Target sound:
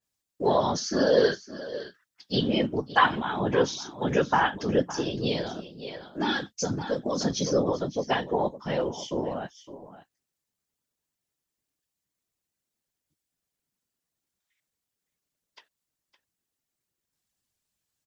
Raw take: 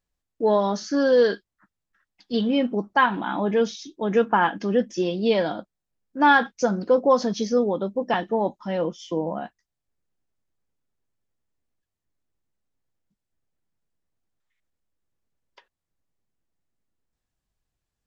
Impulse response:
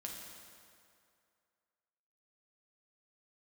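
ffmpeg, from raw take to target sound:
-filter_complex "[0:a]highpass=79,highshelf=f=2.7k:g=12,aecho=1:1:562:0.178,asettb=1/sr,asplit=3[a][b][c];[a]atrim=end=4.924[d];[b]atrim=start=4.92:end=7.21,asetpts=PTS-STARTPTS,afade=t=in:d=0.004:c=qsin,afade=t=out:st=2.286:d=0.004:c=qsin,acrossover=split=360|3000[e][f][g];[f]acompressor=threshold=-33dB:ratio=3[h];[e][h][g]amix=inputs=3:normalize=0[i];[c]atrim=start=7.206[j];[d][i]acrossfade=d=0.004:c1=hsin:c2=qsin[k];[k][j]acrossfade=d=0.004:c1=qsin:c2=hsin,afftfilt=real='hypot(re,im)*cos(2*PI*random(0))':imag='hypot(re,im)*sin(2*PI*random(1))':win_size=512:overlap=0.75,adynamicequalizer=threshold=0.00708:dfrequency=1700:dqfactor=0.7:tfrequency=1700:tqfactor=0.7:attack=5:release=100:ratio=0.375:range=1.5:mode=cutabove:tftype=highshelf,volume=2.5dB"

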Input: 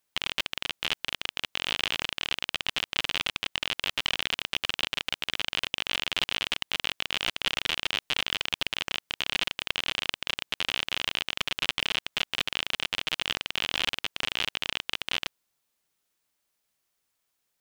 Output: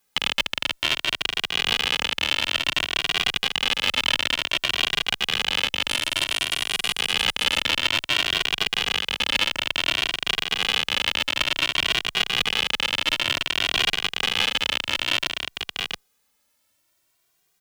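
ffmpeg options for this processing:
-filter_complex "[0:a]asettb=1/sr,asplit=3[a][b][c];[a]atrim=end=5.894[d];[b]atrim=start=5.89:end=6.95,asetpts=PTS-STARTPTS,afade=t=in:d=0.004:c=qsin,afade=t=out:st=1.056:d=0.004:c=qsin,equalizer=f=9.8k:w=1.2:g=14.5[e];[c]atrim=start=6.946[f];[d][e]acrossfade=d=0.004:c1=hsin:c2=qsin[g];[g][f]acrossfade=d=0.004:c1=qsin:c2=hsin,aecho=1:1:675:0.473,alimiter=level_in=11.5dB:limit=-1dB:release=50:level=0:latency=1,asplit=2[h][i];[i]adelay=2,afreqshift=0.56[j];[h][j]amix=inputs=2:normalize=1"

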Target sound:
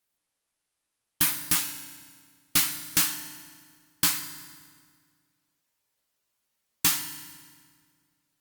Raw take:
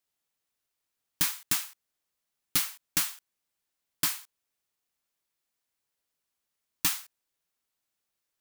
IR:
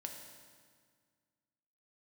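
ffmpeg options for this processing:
-filter_complex "[0:a]asplit=2[a][b];[1:a]atrim=start_sample=2205,adelay=17[c];[b][c]afir=irnorm=-1:irlink=0,volume=-0.5dB[d];[a][d]amix=inputs=2:normalize=0,volume=3.5dB" -ar 48000 -c:a libopus -b:a 32k

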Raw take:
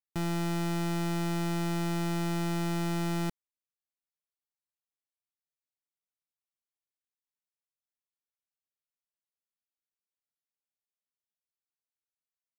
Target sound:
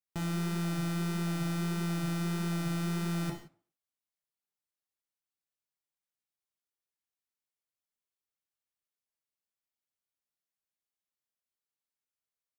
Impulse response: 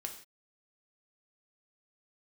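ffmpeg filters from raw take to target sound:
-filter_complex "[0:a]flanger=delay=5:depth=9.4:regen=-77:speed=1.6:shape=triangular,asplit=2[a][b];[b]adelay=240,highpass=300,lowpass=3.4k,asoftclip=type=hard:threshold=-40dB,volume=-30dB[c];[a][c]amix=inputs=2:normalize=0[d];[1:a]atrim=start_sample=2205[e];[d][e]afir=irnorm=-1:irlink=0,volume=5dB"

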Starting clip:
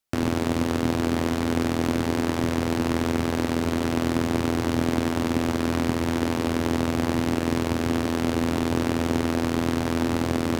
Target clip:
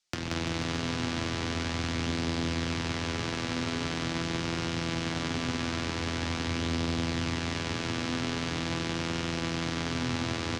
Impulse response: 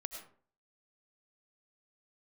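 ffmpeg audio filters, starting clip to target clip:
-filter_complex "[0:a]lowpass=f=6.3k:w=0.5412,lowpass=f=6.3k:w=1.3066,acrossover=split=140|1000|3900[a][b][c][d];[a]acompressor=threshold=-33dB:ratio=4[e];[b]acompressor=threshold=-37dB:ratio=4[f];[c]acompressor=threshold=-40dB:ratio=4[g];[d]acompressor=threshold=-57dB:ratio=4[h];[e][f][g][h]amix=inputs=4:normalize=0,flanger=delay=5.6:depth=6.2:regen=51:speed=0.22:shape=sinusoidal,crystalizer=i=5:c=0,asplit=2[i][j];[j]aecho=0:1:180|342|487.8|619|737.1:0.631|0.398|0.251|0.158|0.1[k];[i][k]amix=inputs=2:normalize=0,volume=1.5dB"

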